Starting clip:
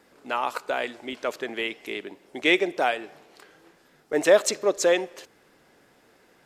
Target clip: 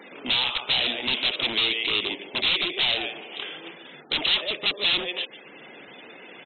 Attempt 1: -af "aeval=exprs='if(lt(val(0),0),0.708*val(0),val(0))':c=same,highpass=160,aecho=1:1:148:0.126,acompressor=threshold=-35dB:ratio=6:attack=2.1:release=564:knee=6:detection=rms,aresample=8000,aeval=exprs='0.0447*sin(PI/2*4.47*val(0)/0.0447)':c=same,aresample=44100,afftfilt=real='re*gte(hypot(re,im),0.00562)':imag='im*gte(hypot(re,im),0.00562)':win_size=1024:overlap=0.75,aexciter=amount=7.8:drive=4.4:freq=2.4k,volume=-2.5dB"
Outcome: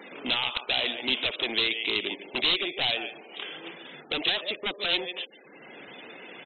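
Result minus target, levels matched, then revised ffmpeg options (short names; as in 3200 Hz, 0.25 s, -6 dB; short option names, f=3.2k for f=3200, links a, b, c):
compressor: peak gain reduction +6 dB
-af "aeval=exprs='if(lt(val(0),0),0.708*val(0),val(0))':c=same,highpass=160,aecho=1:1:148:0.126,acompressor=threshold=-28dB:ratio=6:attack=2.1:release=564:knee=6:detection=rms,aresample=8000,aeval=exprs='0.0447*sin(PI/2*4.47*val(0)/0.0447)':c=same,aresample=44100,afftfilt=real='re*gte(hypot(re,im),0.00562)':imag='im*gte(hypot(re,im),0.00562)':win_size=1024:overlap=0.75,aexciter=amount=7.8:drive=4.4:freq=2.4k,volume=-2.5dB"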